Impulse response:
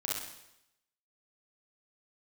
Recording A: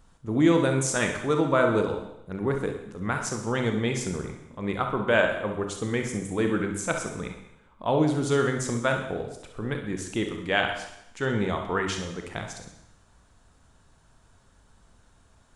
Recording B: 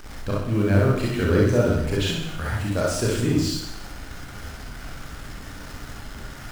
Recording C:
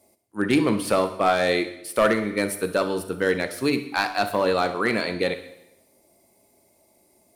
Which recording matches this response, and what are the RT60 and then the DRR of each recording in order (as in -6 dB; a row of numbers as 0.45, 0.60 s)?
B; 0.85, 0.85, 0.85 s; 3.5, -5.0, 10.0 dB